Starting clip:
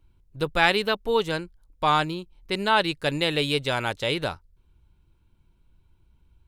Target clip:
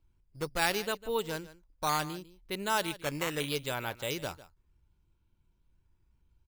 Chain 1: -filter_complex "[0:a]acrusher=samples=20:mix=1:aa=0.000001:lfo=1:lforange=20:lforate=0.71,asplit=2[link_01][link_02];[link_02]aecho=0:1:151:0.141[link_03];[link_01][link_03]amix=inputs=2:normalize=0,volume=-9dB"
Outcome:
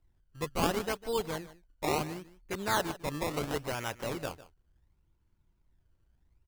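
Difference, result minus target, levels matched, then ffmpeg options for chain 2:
sample-and-hold swept by an LFO: distortion +10 dB
-filter_complex "[0:a]acrusher=samples=6:mix=1:aa=0.000001:lfo=1:lforange=6:lforate=0.71,asplit=2[link_01][link_02];[link_02]aecho=0:1:151:0.141[link_03];[link_01][link_03]amix=inputs=2:normalize=0,volume=-9dB"

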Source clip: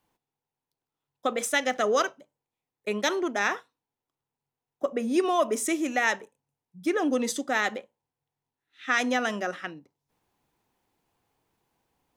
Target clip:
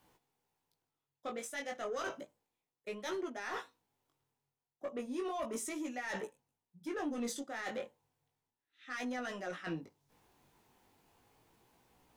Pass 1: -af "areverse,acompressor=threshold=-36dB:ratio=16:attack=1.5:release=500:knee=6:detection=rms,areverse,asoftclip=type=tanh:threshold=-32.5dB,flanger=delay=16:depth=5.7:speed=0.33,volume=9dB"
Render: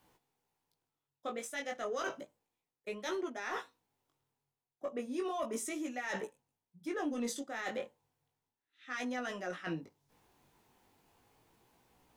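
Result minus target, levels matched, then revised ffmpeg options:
soft clipping: distortion −9 dB
-af "areverse,acompressor=threshold=-36dB:ratio=16:attack=1.5:release=500:knee=6:detection=rms,areverse,asoftclip=type=tanh:threshold=-38.5dB,flanger=delay=16:depth=5.7:speed=0.33,volume=9dB"

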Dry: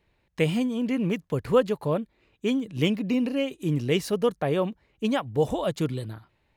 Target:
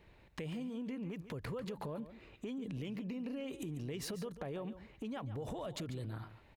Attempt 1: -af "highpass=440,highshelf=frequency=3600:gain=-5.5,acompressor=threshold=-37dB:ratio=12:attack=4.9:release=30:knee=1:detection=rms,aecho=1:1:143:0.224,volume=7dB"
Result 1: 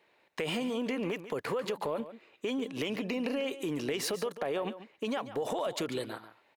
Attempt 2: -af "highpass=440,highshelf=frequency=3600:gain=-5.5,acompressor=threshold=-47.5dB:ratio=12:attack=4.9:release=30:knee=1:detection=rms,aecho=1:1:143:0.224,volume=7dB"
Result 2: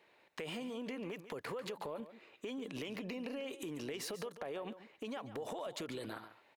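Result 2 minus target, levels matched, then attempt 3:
500 Hz band +2.5 dB
-af "highshelf=frequency=3600:gain=-5.5,acompressor=threshold=-47.5dB:ratio=12:attack=4.9:release=30:knee=1:detection=rms,aecho=1:1:143:0.224,volume=7dB"

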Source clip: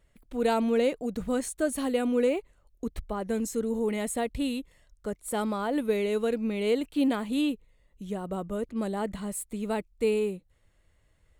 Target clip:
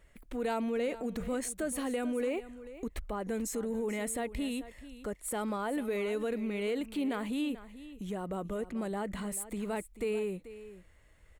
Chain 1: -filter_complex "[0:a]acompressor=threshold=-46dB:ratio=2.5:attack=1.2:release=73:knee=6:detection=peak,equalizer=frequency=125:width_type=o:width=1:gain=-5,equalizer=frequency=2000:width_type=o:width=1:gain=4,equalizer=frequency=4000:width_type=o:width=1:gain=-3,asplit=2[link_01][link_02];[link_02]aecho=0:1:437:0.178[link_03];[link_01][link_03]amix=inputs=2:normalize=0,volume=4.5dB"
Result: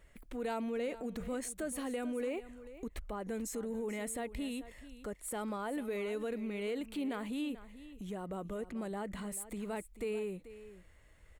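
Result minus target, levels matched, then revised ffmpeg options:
downward compressor: peak gain reduction +4 dB
-filter_complex "[0:a]acompressor=threshold=-39dB:ratio=2.5:attack=1.2:release=73:knee=6:detection=peak,equalizer=frequency=125:width_type=o:width=1:gain=-5,equalizer=frequency=2000:width_type=o:width=1:gain=4,equalizer=frequency=4000:width_type=o:width=1:gain=-3,asplit=2[link_01][link_02];[link_02]aecho=0:1:437:0.178[link_03];[link_01][link_03]amix=inputs=2:normalize=0,volume=4.5dB"

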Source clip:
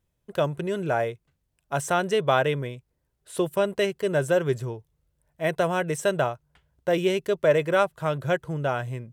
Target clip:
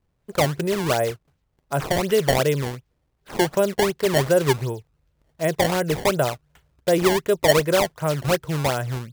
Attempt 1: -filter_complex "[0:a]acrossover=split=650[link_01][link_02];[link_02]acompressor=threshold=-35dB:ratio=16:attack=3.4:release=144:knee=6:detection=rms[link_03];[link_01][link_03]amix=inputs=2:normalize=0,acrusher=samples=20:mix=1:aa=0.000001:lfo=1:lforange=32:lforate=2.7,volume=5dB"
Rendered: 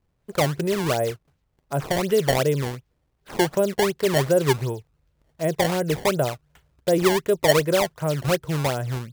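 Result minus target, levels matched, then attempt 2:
downward compressor: peak gain reduction +7.5 dB
-filter_complex "[0:a]acrossover=split=650[link_01][link_02];[link_02]acompressor=threshold=-27dB:ratio=16:attack=3.4:release=144:knee=6:detection=rms[link_03];[link_01][link_03]amix=inputs=2:normalize=0,acrusher=samples=20:mix=1:aa=0.000001:lfo=1:lforange=32:lforate=2.7,volume=5dB"

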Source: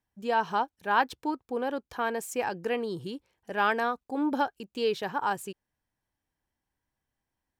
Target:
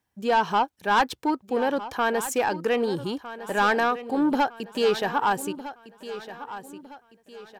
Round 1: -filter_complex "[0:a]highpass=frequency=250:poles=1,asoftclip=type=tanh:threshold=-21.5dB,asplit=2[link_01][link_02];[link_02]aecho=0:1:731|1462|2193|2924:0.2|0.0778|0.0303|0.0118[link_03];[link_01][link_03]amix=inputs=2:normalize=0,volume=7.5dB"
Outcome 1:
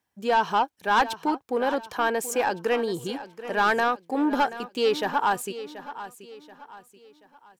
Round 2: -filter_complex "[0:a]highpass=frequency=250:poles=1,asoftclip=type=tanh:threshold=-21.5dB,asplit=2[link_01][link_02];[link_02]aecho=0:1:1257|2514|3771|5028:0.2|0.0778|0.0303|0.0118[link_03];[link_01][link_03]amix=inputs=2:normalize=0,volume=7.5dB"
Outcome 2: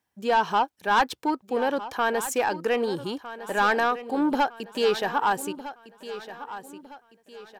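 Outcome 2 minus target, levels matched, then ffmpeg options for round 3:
125 Hz band −3.0 dB
-filter_complex "[0:a]highpass=frequency=94:poles=1,asoftclip=type=tanh:threshold=-21.5dB,asplit=2[link_01][link_02];[link_02]aecho=0:1:1257|2514|3771|5028:0.2|0.0778|0.0303|0.0118[link_03];[link_01][link_03]amix=inputs=2:normalize=0,volume=7.5dB"

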